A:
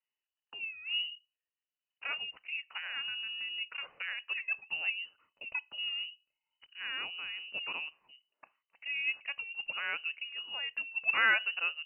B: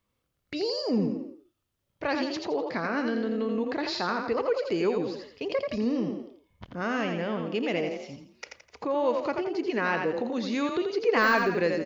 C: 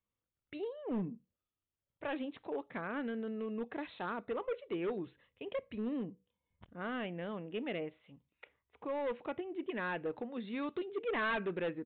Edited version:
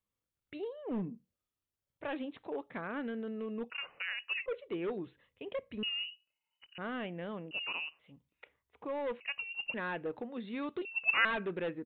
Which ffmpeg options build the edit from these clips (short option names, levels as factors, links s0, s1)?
-filter_complex "[0:a]asplit=5[s0][s1][s2][s3][s4];[2:a]asplit=6[s5][s6][s7][s8][s9][s10];[s5]atrim=end=3.702[s11];[s0]atrim=start=3.698:end=4.462[s12];[s6]atrim=start=4.458:end=5.832[s13];[s1]atrim=start=5.828:end=6.782[s14];[s7]atrim=start=6.778:end=7.512[s15];[s2]atrim=start=7.508:end=7.992[s16];[s8]atrim=start=7.988:end=9.202[s17];[s3]atrim=start=9.198:end=9.742[s18];[s9]atrim=start=9.738:end=10.852[s19];[s4]atrim=start=10.848:end=11.252[s20];[s10]atrim=start=11.248[s21];[s11][s12]acrossfade=d=0.004:c1=hsin:c2=hsin[s22];[s22][s13]acrossfade=d=0.004:c1=hsin:c2=hsin[s23];[s23][s14]acrossfade=d=0.004:c1=hsin:c2=hsin[s24];[s24][s15]acrossfade=d=0.004:c1=hsin:c2=hsin[s25];[s25][s16]acrossfade=d=0.004:c1=hsin:c2=hsin[s26];[s26][s17]acrossfade=d=0.004:c1=hsin:c2=hsin[s27];[s27][s18]acrossfade=d=0.004:c1=hsin:c2=hsin[s28];[s28][s19]acrossfade=d=0.004:c1=hsin:c2=hsin[s29];[s29][s20]acrossfade=d=0.004:c1=hsin:c2=hsin[s30];[s30][s21]acrossfade=d=0.004:c1=hsin:c2=hsin"